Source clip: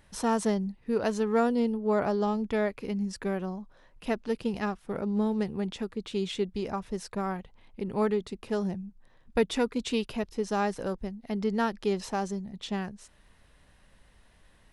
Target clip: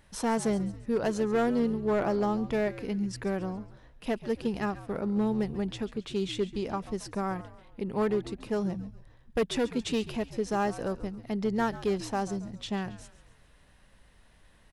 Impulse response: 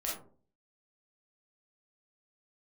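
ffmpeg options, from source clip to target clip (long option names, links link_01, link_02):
-filter_complex "[0:a]asoftclip=type=hard:threshold=-21dB,asplit=5[link_01][link_02][link_03][link_04][link_05];[link_02]adelay=137,afreqshift=-80,volume=-15.5dB[link_06];[link_03]adelay=274,afreqshift=-160,volume=-22.2dB[link_07];[link_04]adelay=411,afreqshift=-240,volume=-29dB[link_08];[link_05]adelay=548,afreqshift=-320,volume=-35.7dB[link_09];[link_01][link_06][link_07][link_08][link_09]amix=inputs=5:normalize=0"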